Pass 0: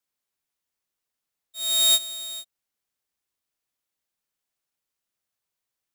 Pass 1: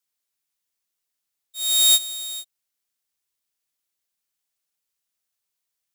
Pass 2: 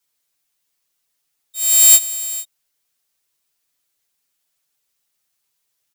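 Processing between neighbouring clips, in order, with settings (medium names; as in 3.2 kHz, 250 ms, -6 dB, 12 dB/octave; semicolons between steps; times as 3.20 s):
treble shelf 2.3 kHz +8.5 dB; trim -4 dB
comb 7.1 ms, depth 93%; trim +6 dB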